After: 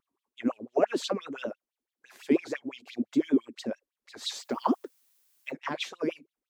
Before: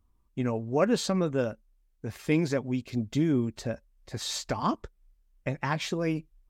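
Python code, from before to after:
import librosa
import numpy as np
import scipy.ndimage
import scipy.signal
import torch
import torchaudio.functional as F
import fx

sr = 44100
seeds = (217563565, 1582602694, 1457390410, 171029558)

y = fx.filter_lfo_highpass(x, sr, shape='sine', hz=5.9, low_hz=240.0, high_hz=3500.0, q=6.0)
y = fx.vibrato(y, sr, rate_hz=6.4, depth_cents=90.0)
y = fx.dmg_noise_colour(y, sr, seeds[0], colour='blue', level_db=-61.0, at=(4.36, 5.5), fade=0.02)
y = F.gain(torch.from_numpy(y), -7.0).numpy()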